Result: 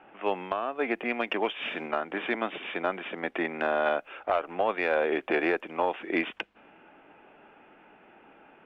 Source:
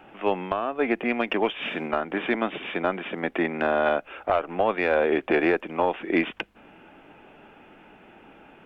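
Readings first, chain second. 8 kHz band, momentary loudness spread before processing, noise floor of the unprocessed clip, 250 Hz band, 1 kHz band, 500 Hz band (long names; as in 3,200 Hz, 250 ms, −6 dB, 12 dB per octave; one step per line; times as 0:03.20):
can't be measured, 6 LU, −52 dBFS, −6.5 dB, −3.0 dB, −4.5 dB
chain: low-pass that shuts in the quiet parts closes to 2,300 Hz, open at −22.5 dBFS
low-shelf EQ 210 Hz −11.5 dB
level −2.5 dB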